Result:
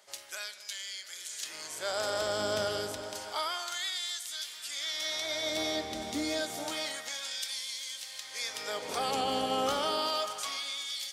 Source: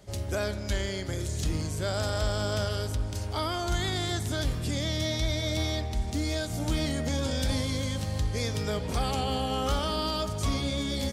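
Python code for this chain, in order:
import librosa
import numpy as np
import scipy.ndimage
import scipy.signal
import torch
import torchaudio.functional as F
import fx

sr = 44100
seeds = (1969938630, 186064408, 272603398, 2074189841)

y = fx.echo_alternate(x, sr, ms=233, hz=1800.0, feedback_pct=85, wet_db=-12.0)
y = fx.filter_lfo_highpass(y, sr, shape='sine', hz=0.29, low_hz=280.0, high_hz=2900.0, q=0.76)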